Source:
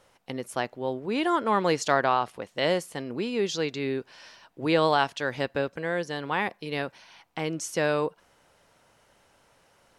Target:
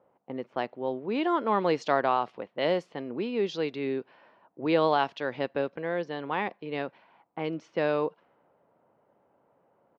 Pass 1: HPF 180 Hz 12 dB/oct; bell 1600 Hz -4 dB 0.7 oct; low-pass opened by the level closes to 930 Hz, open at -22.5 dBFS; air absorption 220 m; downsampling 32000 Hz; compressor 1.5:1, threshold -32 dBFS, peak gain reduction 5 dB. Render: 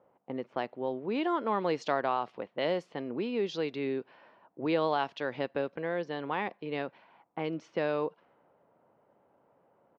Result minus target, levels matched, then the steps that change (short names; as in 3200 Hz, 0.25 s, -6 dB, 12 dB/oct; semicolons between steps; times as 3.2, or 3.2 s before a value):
compressor: peak gain reduction +5 dB
remove: compressor 1.5:1, threshold -32 dBFS, peak gain reduction 5 dB